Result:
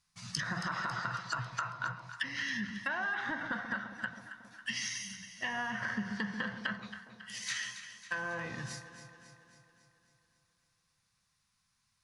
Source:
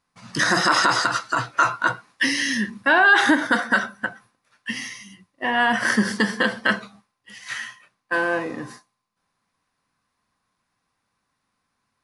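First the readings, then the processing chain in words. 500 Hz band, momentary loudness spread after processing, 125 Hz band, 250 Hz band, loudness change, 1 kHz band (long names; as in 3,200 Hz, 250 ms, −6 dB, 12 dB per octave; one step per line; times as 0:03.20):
−20.0 dB, 11 LU, −8.0 dB, −16.0 dB, −16.5 dB, −17.0 dB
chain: treble cut that deepens with the level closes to 1,400 Hz, closed at −18 dBFS
drawn EQ curve 110 Hz 0 dB, 180 Hz −3 dB, 300 Hz −20 dB, 6,300 Hz +5 dB, 9,900 Hz +1 dB
downward compressor, threshold −33 dBFS, peak gain reduction 11 dB
on a send: delay that swaps between a low-pass and a high-pass 137 ms, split 1,000 Hz, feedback 75%, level −9 dB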